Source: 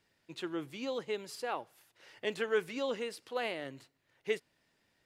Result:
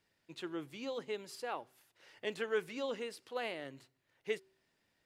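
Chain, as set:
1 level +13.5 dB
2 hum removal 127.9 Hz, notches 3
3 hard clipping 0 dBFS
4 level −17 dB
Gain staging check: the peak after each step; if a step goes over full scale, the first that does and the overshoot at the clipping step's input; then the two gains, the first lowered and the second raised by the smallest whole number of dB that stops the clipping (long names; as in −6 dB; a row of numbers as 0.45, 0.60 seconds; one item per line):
−4.5, −4.5, −4.5, −21.5 dBFS
no step passes full scale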